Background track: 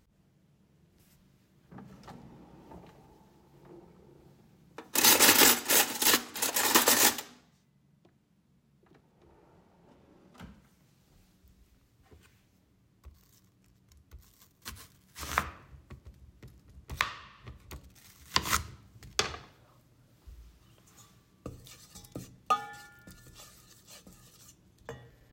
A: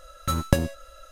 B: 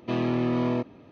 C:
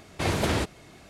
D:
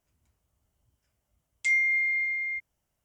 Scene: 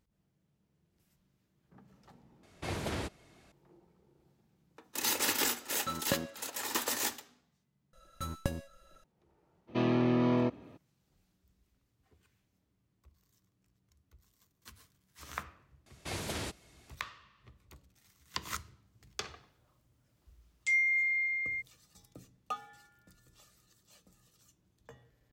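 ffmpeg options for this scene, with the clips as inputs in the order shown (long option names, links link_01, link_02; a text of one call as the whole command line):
ffmpeg -i bed.wav -i cue0.wav -i cue1.wav -i cue2.wav -i cue3.wav -filter_complex "[3:a]asplit=2[link_01][link_02];[1:a]asplit=2[link_03][link_04];[0:a]volume=-10.5dB[link_05];[link_03]highpass=200,lowpass=4800[link_06];[link_02]highshelf=frequency=3100:gain=9.5[link_07];[link_05]asplit=2[link_08][link_09];[link_08]atrim=end=2.434[link_10];[link_01]atrim=end=1.09,asetpts=PTS-STARTPTS,volume=-11dB[link_11];[link_09]atrim=start=3.516[link_12];[link_06]atrim=end=1.11,asetpts=PTS-STARTPTS,volume=-9dB,afade=type=in:duration=0.004:curve=hsin,afade=type=out:start_time=1.106:duration=0.004:curve=hsin,adelay=5590[link_13];[link_04]atrim=end=1.11,asetpts=PTS-STARTPTS,volume=-13.5dB,afade=type=in:duration=0.004:curve=hsin,afade=type=out:start_time=1.106:duration=0.004:curve=hsin,adelay=7930[link_14];[2:a]atrim=end=1.11,asetpts=PTS-STARTPTS,volume=-2.5dB,afade=type=in:duration=0.02,afade=type=out:start_time=1.09:duration=0.02,adelay=9670[link_15];[link_07]atrim=end=1.09,asetpts=PTS-STARTPTS,volume=-14dB,afade=type=in:duration=0.004:curve=hsin,afade=type=out:start_time=1.086:duration=0.004:curve=hsin,adelay=15860[link_16];[4:a]atrim=end=3.04,asetpts=PTS-STARTPTS,volume=-4dB,afade=type=in:duration=0.004:curve=hsin,afade=type=out:start_time=3.036:duration=0.004:curve=hsin,adelay=19020[link_17];[link_10][link_11]acrossfade=duration=0.004:curve1=hsin:curve2=hsin[link_18];[link_18][link_12]acrossfade=duration=0.004:curve1=hsin:curve2=hsin[link_19];[link_19][link_13][link_14][link_15][link_16][link_17]amix=inputs=6:normalize=0" out.wav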